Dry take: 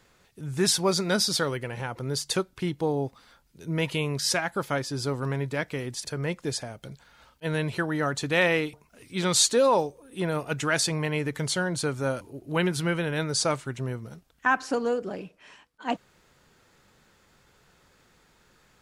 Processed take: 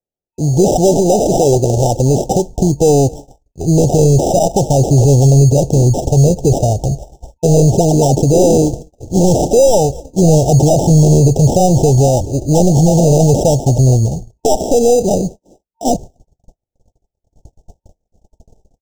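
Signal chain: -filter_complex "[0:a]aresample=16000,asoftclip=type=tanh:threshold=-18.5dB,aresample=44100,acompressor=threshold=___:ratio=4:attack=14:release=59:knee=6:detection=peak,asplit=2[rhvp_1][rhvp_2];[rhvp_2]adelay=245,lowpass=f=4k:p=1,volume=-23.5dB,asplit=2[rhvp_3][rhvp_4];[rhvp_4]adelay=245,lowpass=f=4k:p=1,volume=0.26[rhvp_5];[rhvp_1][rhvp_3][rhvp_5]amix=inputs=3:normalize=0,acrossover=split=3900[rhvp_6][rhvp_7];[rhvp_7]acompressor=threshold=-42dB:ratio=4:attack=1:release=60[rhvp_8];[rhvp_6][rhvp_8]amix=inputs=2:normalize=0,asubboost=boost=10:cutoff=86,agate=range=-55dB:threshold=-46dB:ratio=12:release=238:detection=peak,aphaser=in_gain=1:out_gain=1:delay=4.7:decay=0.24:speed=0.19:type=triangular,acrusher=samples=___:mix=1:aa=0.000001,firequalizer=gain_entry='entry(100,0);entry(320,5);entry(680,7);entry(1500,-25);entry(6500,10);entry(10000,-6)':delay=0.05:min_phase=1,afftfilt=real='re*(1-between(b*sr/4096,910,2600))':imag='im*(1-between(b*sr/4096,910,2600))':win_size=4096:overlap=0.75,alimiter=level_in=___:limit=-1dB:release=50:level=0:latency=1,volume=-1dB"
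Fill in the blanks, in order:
-32dB, 20, 21.5dB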